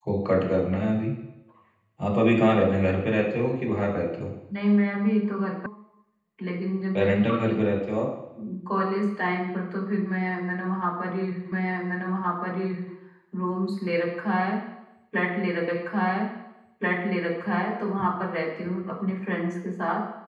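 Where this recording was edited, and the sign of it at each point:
5.66 sound cut off
11.52 repeat of the last 1.42 s
15.68 repeat of the last 1.68 s

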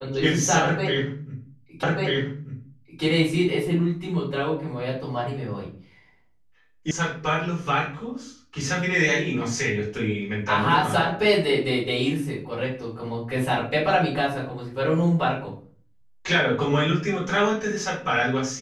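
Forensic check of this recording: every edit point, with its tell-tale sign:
1.83 repeat of the last 1.19 s
6.91 sound cut off

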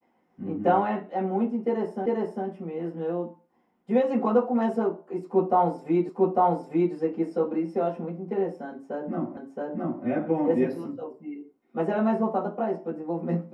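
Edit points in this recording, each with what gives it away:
2.06 repeat of the last 0.4 s
6.09 repeat of the last 0.85 s
9.37 repeat of the last 0.67 s

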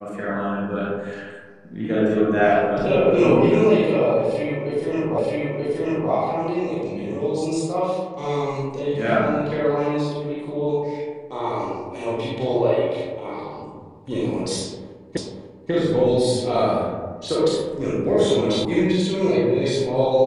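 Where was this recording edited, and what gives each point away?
5.18 repeat of the last 0.93 s
15.17 repeat of the last 0.54 s
18.65 sound cut off

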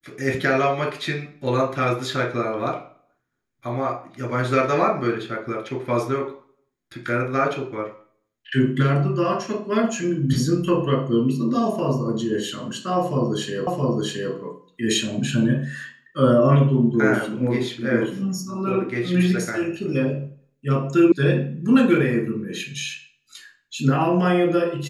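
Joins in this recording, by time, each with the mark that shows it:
13.67 repeat of the last 0.67 s
21.12 sound cut off

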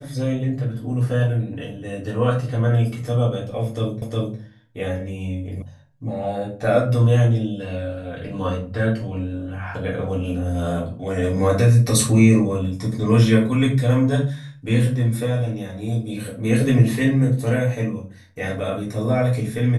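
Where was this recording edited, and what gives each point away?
4.02 repeat of the last 0.36 s
5.62 sound cut off

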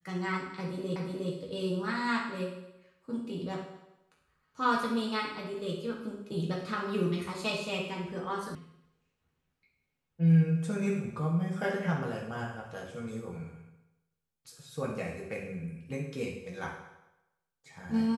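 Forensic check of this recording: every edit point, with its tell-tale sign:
0.96 repeat of the last 0.36 s
8.55 sound cut off

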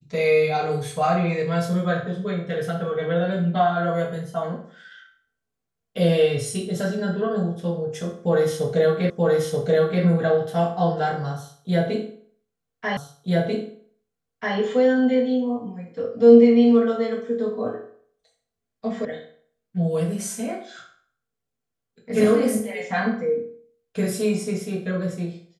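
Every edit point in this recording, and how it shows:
9.1 repeat of the last 0.93 s
12.97 repeat of the last 1.59 s
19.05 sound cut off

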